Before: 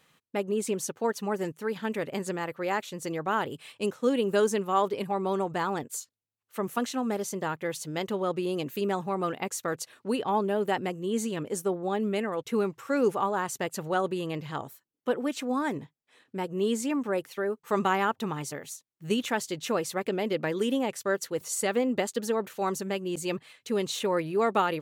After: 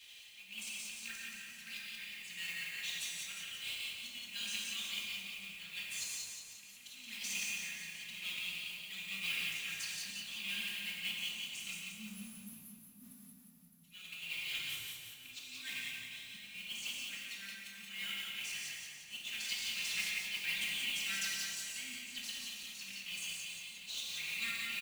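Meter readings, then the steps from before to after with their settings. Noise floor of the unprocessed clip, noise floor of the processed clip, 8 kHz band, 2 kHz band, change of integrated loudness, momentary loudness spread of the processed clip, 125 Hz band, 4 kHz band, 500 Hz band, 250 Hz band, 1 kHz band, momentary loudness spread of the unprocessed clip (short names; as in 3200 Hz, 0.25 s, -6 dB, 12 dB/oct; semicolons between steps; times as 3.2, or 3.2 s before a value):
-77 dBFS, -56 dBFS, -4.5 dB, -3.0 dB, -10.0 dB, 12 LU, -23.5 dB, +2.0 dB, under -40 dB, -27.0 dB, -30.0 dB, 8 LU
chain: rattling part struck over -37 dBFS, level -34 dBFS; notches 50/100/150 Hz; de-esser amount 85%; weighting filter D; spectral delete 11.71–13.83, 270–9900 Hz; elliptic band-stop 120–2400 Hz, stop band 80 dB; low shelf 93 Hz +11 dB; comb 3.7 ms, depth 80%; auto swell 0.764 s; modulation noise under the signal 12 dB; on a send: split-band echo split 1100 Hz, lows 0.255 s, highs 0.176 s, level -4.5 dB; on the sum: non-linear reverb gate 0.23 s flat, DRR -3 dB; gain -1.5 dB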